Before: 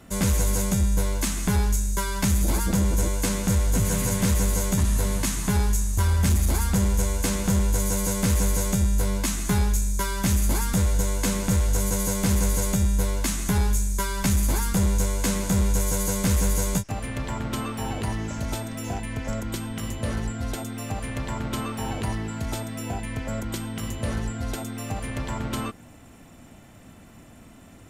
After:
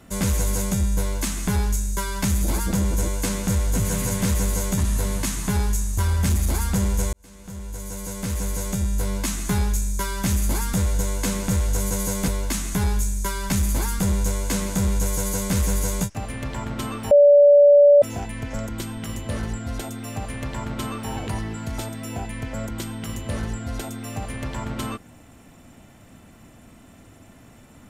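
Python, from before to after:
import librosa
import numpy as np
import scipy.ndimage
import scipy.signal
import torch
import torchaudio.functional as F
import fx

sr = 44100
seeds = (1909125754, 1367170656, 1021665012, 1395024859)

y = fx.edit(x, sr, fx.fade_in_span(start_s=7.13, length_s=2.14),
    fx.cut(start_s=12.28, length_s=0.74),
    fx.bleep(start_s=17.85, length_s=0.91, hz=577.0, db=-8.5), tone=tone)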